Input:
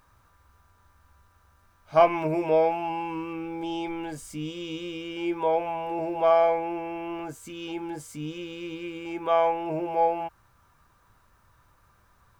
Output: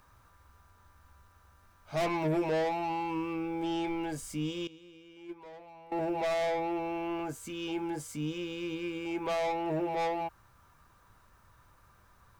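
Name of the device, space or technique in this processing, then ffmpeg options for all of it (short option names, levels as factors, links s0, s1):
one-band saturation: -filter_complex "[0:a]acrossover=split=310|3900[s0][s1][s2];[s1]asoftclip=type=tanh:threshold=0.0316[s3];[s0][s3][s2]amix=inputs=3:normalize=0,asettb=1/sr,asplit=3[s4][s5][s6];[s4]atrim=end=4.674[s7];[s5]atrim=start=4.67:end=5.92,asetpts=PTS-STARTPTS,afade=t=in:d=0.004:c=qsin,afade=t=out:st=1.246:d=0.004:c=qsin,agate=range=0.126:threshold=0.0501:ratio=16:detection=peak[s8];[s6]atrim=start=5.916[s9];[s7][s8]acrossfade=d=0.004:c1=hsin:c2=qsin[s10];[s10][s9]acrossfade=d=0.004:c1=qsin:c2=hsin"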